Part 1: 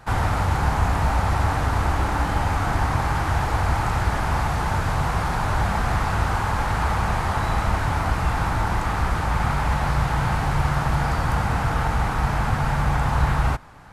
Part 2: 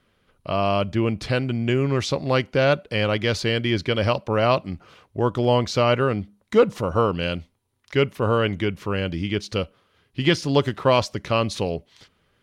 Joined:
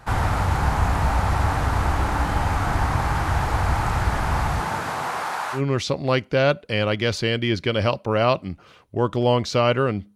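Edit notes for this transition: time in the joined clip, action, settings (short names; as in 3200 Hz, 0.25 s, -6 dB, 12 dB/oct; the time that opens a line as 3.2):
part 1
4.6–5.62 HPF 140 Hz -> 900 Hz
5.57 switch to part 2 from 1.79 s, crossfade 0.10 s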